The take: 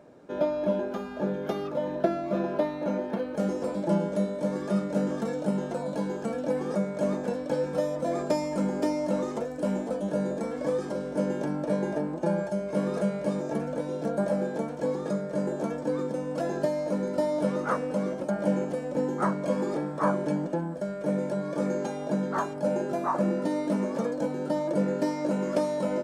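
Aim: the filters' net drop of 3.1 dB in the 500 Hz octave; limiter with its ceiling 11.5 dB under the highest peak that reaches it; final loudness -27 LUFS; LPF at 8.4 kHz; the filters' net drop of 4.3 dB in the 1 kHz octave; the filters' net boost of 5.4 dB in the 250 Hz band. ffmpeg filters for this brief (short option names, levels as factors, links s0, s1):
-af "lowpass=8400,equalizer=f=250:t=o:g=8.5,equalizer=f=500:t=o:g=-4.5,equalizer=f=1000:t=o:g=-4.5,volume=1.58,alimiter=limit=0.119:level=0:latency=1"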